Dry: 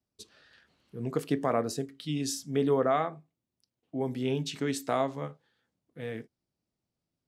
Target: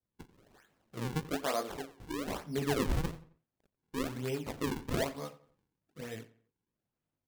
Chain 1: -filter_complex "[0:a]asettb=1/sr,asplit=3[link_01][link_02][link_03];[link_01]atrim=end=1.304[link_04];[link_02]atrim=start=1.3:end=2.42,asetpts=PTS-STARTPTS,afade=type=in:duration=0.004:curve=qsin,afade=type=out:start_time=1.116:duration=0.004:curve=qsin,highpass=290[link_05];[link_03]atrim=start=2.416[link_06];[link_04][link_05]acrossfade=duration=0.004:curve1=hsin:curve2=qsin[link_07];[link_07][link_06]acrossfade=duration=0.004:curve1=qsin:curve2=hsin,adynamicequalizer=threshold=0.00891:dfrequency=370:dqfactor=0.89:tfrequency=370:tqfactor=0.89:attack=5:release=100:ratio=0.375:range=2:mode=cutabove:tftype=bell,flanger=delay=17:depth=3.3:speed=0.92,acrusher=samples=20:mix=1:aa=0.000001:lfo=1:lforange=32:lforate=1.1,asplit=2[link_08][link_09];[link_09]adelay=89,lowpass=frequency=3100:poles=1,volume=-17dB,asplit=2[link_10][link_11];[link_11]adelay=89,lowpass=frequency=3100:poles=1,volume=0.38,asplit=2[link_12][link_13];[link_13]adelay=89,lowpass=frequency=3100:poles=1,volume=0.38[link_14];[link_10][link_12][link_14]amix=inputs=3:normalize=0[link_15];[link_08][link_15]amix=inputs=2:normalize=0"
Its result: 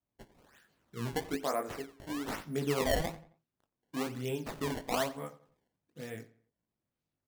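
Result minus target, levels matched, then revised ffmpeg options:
sample-and-hold swept by an LFO: distortion −6 dB
-filter_complex "[0:a]asettb=1/sr,asplit=3[link_01][link_02][link_03];[link_01]atrim=end=1.304[link_04];[link_02]atrim=start=1.3:end=2.42,asetpts=PTS-STARTPTS,afade=type=in:duration=0.004:curve=qsin,afade=type=out:start_time=1.116:duration=0.004:curve=qsin,highpass=290[link_05];[link_03]atrim=start=2.416[link_06];[link_04][link_05]acrossfade=duration=0.004:curve1=hsin:curve2=qsin[link_07];[link_07][link_06]acrossfade=duration=0.004:curve1=qsin:curve2=hsin,adynamicequalizer=threshold=0.00891:dfrequency=370:dqfactor=0.89:tfrequency=370:tqfactor=0.89:attack=5:release=100:ratio=0.375:range=2:mode=cutabove:tftype=bell,flanger=delay=17:depth=3.3:speed=0.92,acrusher=samples=40:mix=1:aa=0.000001:lfo=1:lforange=64:lforate=1.1,asplit=2[link_08][link_09];[link_09]adelay=89,lowpass=frequency=3100:poles=1,volume=-17dB,asplit=2[link_10][link_11];[link_11]adelay=89,lowpass=frequency=3100:poles=1,volume=0.38,asplit=2[link_12][link_13];[link_13]adelay=89,lowpass=frequency=3100:poles=1,volume=0.38[link_14];[link_10][link_12][link_14]amix=inputs=3:normalize=0[link_15];[link_08][link_15]amix=inputs=2:normalize=0"

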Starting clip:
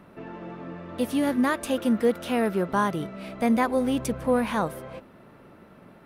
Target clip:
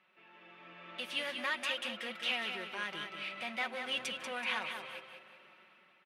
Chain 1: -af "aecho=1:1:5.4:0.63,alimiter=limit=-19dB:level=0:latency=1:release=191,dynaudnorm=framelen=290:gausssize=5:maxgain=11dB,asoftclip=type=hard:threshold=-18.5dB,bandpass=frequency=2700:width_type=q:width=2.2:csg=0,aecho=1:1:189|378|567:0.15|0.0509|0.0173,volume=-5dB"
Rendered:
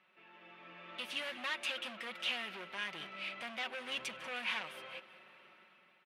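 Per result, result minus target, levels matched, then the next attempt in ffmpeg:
echo-to-direct −10 dB; hard clipping: distortion +10 dB
-af "aecho=1:1:5.4:0.63,alimiter=limit=-19dB:level=0:latency=1:release=191,dynaudnorm=framelen=290:gausssize=5:maxgain=11dB,asoftclip=type=hard:threshold=-18.5dB,bandpass=frequency=2700:width_type=q:width=2.2:csg=0,aecho=1:1:189|378|567|756:0.473|0.161|0.0547|0.0186,volume=-5dB"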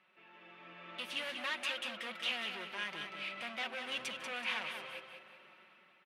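hard clipping: distortion +10 dB
-af "aecho=1:1:5.4:0.63,alimiter=limit=-19dB:level=0:latency=1:release=191,dynaudnorm=framelen=290:gausssize=5:maxgain=11dB,asoftclip=type=hard:threshold=-12dB,bandpass=frequency=2700:width_type=q:width=2.2:csg=0,aecho=1:1:189|378|567|756:0.473|0.161|0.0547|0.0186,volume=-5dB"

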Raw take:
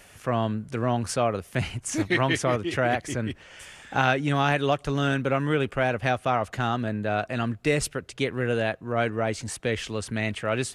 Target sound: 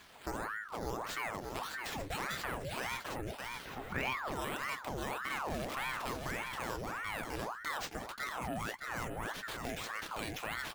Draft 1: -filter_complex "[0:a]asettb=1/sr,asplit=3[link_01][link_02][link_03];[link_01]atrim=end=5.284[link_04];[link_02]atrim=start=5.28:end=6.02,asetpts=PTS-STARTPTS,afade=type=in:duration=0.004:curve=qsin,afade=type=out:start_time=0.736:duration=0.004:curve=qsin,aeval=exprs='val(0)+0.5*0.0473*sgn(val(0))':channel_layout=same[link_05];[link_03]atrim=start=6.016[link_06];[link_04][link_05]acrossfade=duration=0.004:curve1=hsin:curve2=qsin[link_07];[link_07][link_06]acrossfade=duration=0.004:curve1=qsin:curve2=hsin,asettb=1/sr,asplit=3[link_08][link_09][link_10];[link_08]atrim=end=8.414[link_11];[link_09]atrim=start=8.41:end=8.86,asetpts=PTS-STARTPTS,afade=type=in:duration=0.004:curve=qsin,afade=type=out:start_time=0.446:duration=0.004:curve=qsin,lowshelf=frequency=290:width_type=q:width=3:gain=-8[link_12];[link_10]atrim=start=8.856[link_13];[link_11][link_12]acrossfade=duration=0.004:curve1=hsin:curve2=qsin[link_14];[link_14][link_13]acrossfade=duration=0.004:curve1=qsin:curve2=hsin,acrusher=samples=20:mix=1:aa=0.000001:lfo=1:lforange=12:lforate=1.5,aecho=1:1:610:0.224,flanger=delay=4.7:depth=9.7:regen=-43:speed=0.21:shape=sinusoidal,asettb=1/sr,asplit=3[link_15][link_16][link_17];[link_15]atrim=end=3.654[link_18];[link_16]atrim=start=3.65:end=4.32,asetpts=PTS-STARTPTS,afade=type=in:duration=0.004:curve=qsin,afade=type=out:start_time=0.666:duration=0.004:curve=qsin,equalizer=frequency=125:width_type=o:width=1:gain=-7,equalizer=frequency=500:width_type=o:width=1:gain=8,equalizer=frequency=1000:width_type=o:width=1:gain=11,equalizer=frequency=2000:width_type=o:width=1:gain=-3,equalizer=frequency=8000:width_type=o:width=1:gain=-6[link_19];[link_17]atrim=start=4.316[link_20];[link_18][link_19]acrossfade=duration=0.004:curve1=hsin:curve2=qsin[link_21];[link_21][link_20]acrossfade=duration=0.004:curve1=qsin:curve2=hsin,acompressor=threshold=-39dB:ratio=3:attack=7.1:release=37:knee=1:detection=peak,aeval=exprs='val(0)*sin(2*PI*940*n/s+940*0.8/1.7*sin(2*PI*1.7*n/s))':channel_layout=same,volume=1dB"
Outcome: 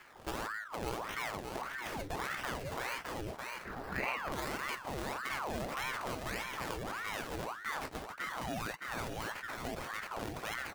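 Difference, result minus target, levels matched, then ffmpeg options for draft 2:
sample-and-hold swept by an LFO: distortion +9 dB
-filter_complex "[0:a]asettb=1/sr,asplit=3[link_01][link_02][link_03];[link_01]atrim=end=5.284[link_04];[link_02]atrim=start=5.28:end=6.02,asetpts=PTS-STARTPTS,afade=type=in:duration=0.004:curve=qsin,afade=type=out:start_time=0.736:duration=0.004:curve=qsin,aeval=exprs='val(0)+0.5*0.0473*sgn(val(0))':channel_layout=same[link_05];[link_03]atrim=start=6.016[link_06];[link_04][link_05]acrossfade=duration=0.004:curve1=hsin:curve2=qsin[link_07];[link_07][link_06]acrossfade=duration=0.004:curve1=qsin:curve2=hsin,asettb=1/sr,asplit=3[link_08][link_09][link_10];[link_08]atrim=end=8.414[link_11];[link_09]atrim=start=8.41:end=8.86,asetpts=PTS-STARTPTS,afade=type=in:duration=0.004:curve=qsin,afade=type=out:start_time=0.446:duration=0.004:curve=qsin,lowshelf=frequency=290:width_type=q:width=3:gain=-8[link_12];[link_10]atrim=start=8.856[link_13];[link_11][link_12]acrossfade=duration=0.004:curve1=hsin:curve2=qsin[link_14];[link_14][link_13]acrossfade=duration=0.004:curve1=qsin:curve2=hsin,acrusher=samples=6:mix=1:aa=0.000001:lfo=1:lforange=3.6:lforate=1.5,aecho=1:1:610:0.224,flanger=delay=4.7:depth=9.7:regen=-43:speed=0.21:shape=sinusoidal,asettb=1/sr,asplit=3[link_15][link_16][link_17];[link_15]atrim=end=3.654[link_18];[link_16]atrim=start=3.65:end=4.32,asetpts=PTS-STARTPTS,afade=type=in:duration=0.004:curve=qsin,afade=type=out:start_time=0.666:duration=0.004:curve=qsin,equalizer=frequency=125:width_type=o:width=1:gain=-7,equalizer=frequency=500:width_type=o:width=1:gain=8,equalizer=frequency=1000:width_type=o:width=1:gain=11,equalizer=frequency=2000:width_type=o:width=1:gain=-3,equalizer=frequency=8000:width_type=o:width=1:gain=-6[link_19];[link_17]atrim=start=4.316[link_20];[link_18][link_19]acrossfade=duration=0.004:curve1=hsin:curve2=qsin[link_21];[link_21][link_20]acrossfade=duration=0.004:curve1=qsin:curve2=hsin,acompressor=threshold=-39dB:ratio=3:attack=7.1:release=37:knee=1:detection=peak,aeval=exprs='val(0)*sin(2*PI*940*n/s+940*0.8/1.7*sin(2*PI*1.7*n/s))':channel_layout=same,volume=1dB"

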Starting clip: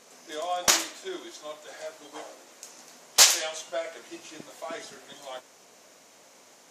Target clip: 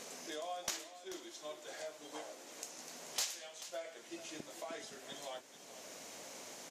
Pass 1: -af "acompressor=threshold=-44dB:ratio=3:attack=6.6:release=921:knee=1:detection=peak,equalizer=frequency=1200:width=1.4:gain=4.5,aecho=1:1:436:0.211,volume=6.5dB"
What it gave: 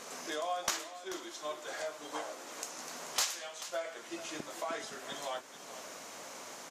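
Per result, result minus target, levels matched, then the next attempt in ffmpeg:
downward compressor: peak gain reduction −4.5 dB; 1,000 Hz band +3.0 dB
-af "acompressor=threshold=-51dB:ratio=3:attack=6.6:release=921:knee=1:detection=peak,equalizer=frequency=1200:width=1.4:gain=4.5,aecho=1:1:436:0.211,volume=6.5dB"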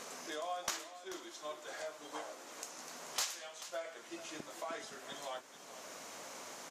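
1,000 Hz band +3.0 dB
-af "acompressor=threshold=-51dB:ratio=3:attack=6.6:release=921:knee=1:detection=peak,equalizer=frequency=1200:width=1.4:gain=-3.5,aecho=1:1:436:0.211,volume=6.5dB"

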